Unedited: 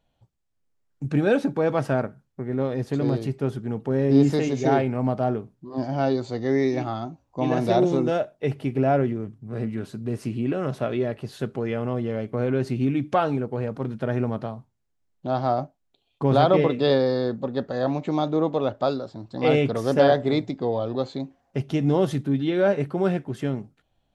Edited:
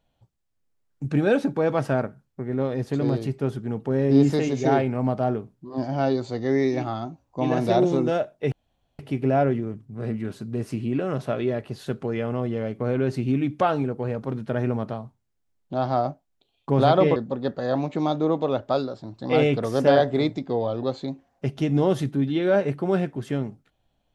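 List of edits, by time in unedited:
0:08.52: splice in room tone 0.47 s
0:16.69–0:17.28: remove

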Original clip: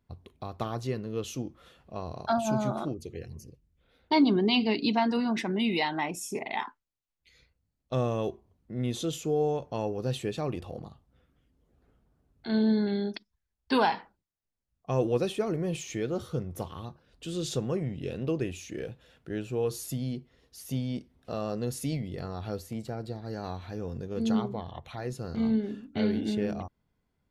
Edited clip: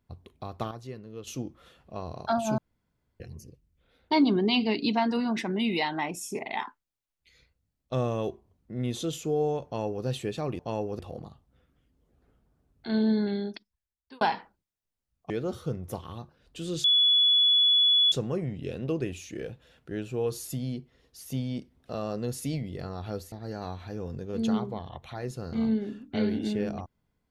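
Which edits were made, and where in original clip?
0:00.71–0:01.27: clip gain −8.5 dB
0:02.58–0:03.20: fill with room tone
0:09.65–0:10.05: duplicate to 0:10.59
0:12.86–0:13.81: fade out
0:14.90–0:15.97: remove
0:17.51: insert tone 3,410 Hz −18 dBFS 1.28 s
0:22.71–0:23.14: remove

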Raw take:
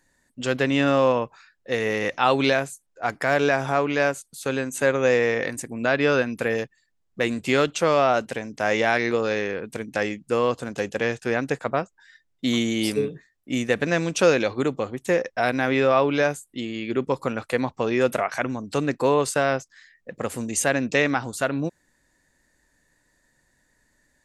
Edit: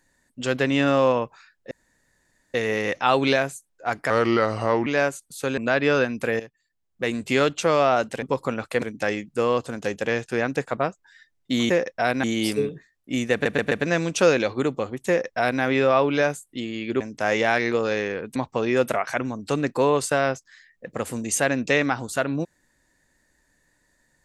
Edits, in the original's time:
0:01.71: splice in room tone 0.83 s
0:03.27–0:03.89: play speed 81%
0:04.60–0:05.75: remove
0:06.57–0:07.44: fade in, from −13 dB
0:08.40–0:09.75: swap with 0:17.01–0:17.60
0:13.72: stutter 0.13 s, 4 plays
0:15.08–0:15.62: duplicate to 0:12.63

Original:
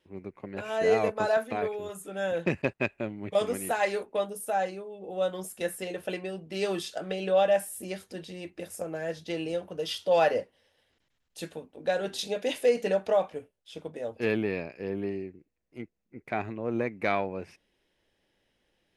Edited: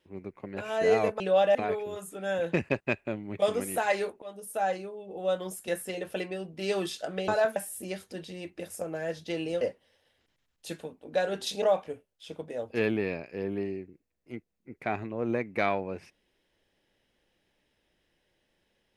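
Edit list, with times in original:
0:01.20–0:01.48: swap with 0:07.21–0:07.56
0:04.15–0:04.69: fade in equal-power, from −23.5 dB
0:09.61–0:10.33: remove
0:12.34–0:13.08: remove

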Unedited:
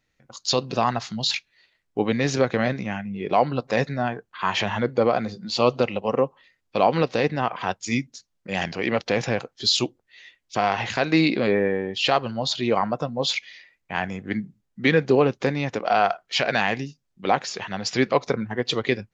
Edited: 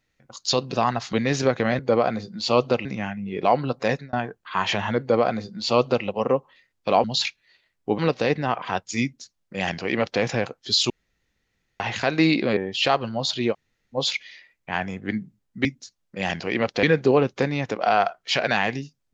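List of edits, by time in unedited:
0:01.13–0:02.07: move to 0:06.92
0:03.75–0:04.01: fade out
0:04.88–0:05.94: duplicate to 0:02.73
0:07.97–0:09.15: duplicate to 0:14.87
0:09.84–0:10.74: fill with room tone
0:11.51–0:11.79: remove
0:12.74–0:13.17: fill with room tone, crossfade 0.06 s

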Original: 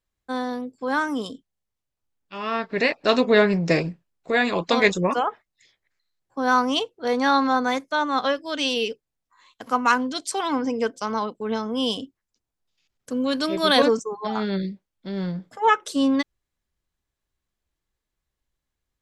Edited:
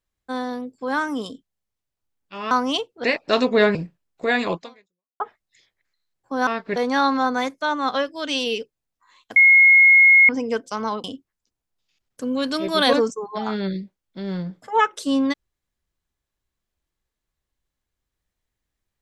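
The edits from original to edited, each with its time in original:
0:02.51–0:02.80: swap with 0:06.53–0:07.06
0:03.51–0:03.81: remove
0:04.60–0:05.26: fade out exponential
0:09.66–0:10.59: beep over 2,160 Hz −8.5 dBFS
0:11.34–0:11.93: remove

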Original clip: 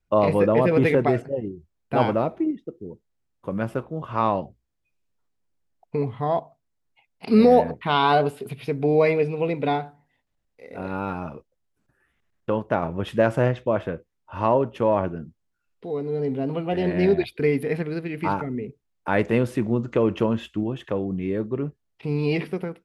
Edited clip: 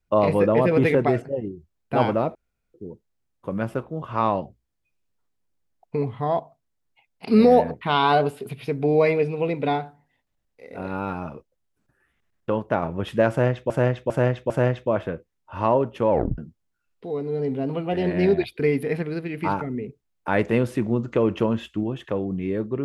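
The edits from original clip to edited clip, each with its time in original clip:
0:02.35–0:02.74: fill with room tone
0:13.30–0:13.70: repeat, 4 plays
0:14.90: tape stop 0.28 s

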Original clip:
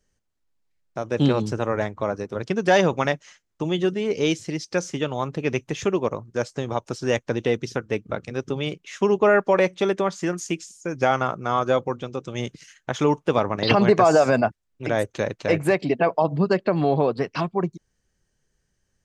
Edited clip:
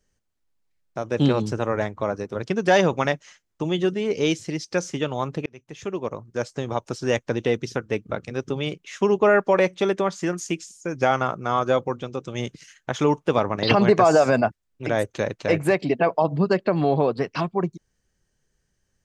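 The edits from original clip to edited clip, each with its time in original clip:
0:05.46–0:06.95: fade in equal-power

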